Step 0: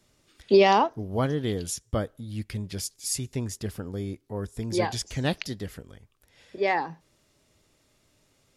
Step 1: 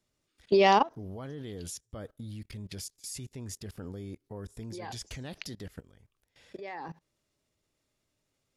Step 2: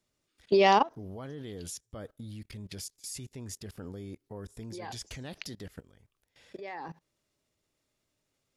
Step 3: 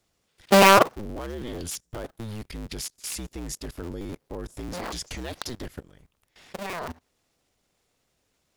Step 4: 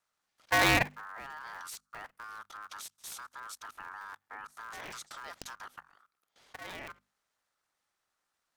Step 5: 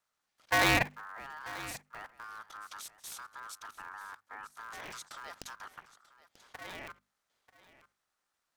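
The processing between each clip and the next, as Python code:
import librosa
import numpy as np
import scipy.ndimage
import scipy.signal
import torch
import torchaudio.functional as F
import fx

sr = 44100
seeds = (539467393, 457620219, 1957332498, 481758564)

y1 = fx.level_steps(x, sr, step_db=20)
y2 = fx.low_shelf(y1, sr, hz=140.0, db=-3.0)
y3 = fx.cycle_switch(y2, sr, every=2, mode='inverted')
y3 = y3 * 10.0 ** (7.0 / 20.0)
y4 = y3 * np.sin(2.0 * np.pi * 1300.0 * np.arange(len(y3)) / sr)
y4 = fx.hum_notches(y4, sr, base_hz=50, count=5)
y4 = y4 * 10.0 ** (-7.5 / 20.0)
y5 = y4 + 10.0 ** (-17.5 / 20.0) * np.pad(y4, (int(938 * sr / 1000.0), 0))[:len(y4)]
y5 = y5 * 10.0 ** (-1.0 / 20.0)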